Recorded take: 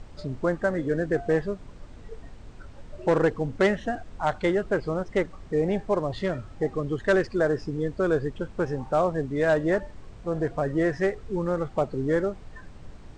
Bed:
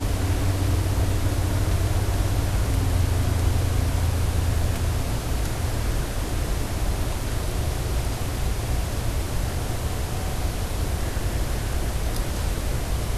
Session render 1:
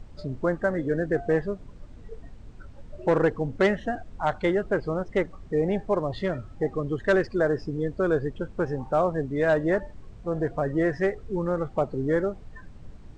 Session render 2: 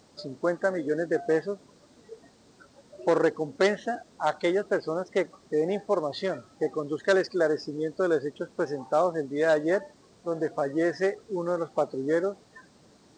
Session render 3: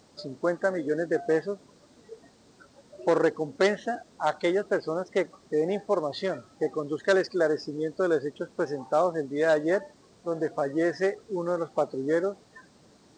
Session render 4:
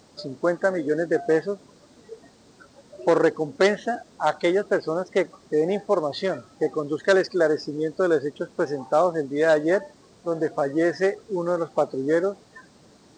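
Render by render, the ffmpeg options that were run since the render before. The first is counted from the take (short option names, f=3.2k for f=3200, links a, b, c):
-af "afftdn=nr=6:nf=-45"
-af "highpass=270,highshelf=f=3.5k:t=q:w=1.5:g=7"
-af anull
-af "volume=4dB"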